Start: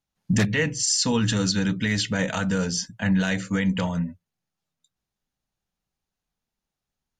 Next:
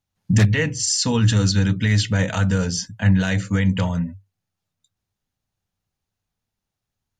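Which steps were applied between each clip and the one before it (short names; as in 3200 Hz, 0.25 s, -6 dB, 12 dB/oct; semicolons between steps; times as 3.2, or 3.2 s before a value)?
bell 98 Hz +14.5 dB 0.39 oct; gain +1.5 dB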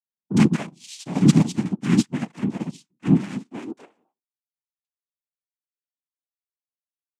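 noise vocoder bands 4; high-pass sweep 180 Hz -> 1800 Hz, 3.32–4.6; upward expander 2.5:1, over -32 dBFS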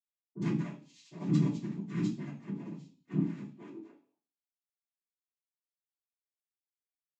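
reverb RT60 0.45 s, pre-delay 46 ms; gain -6.5 dB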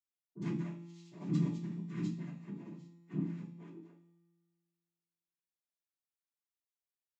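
resonator 170 Hz, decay 1.8 s, mix 70%; gain +4 dB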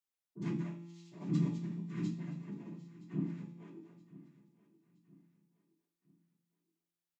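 feedback echo 0.971 s, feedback 40%, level -18.5 dB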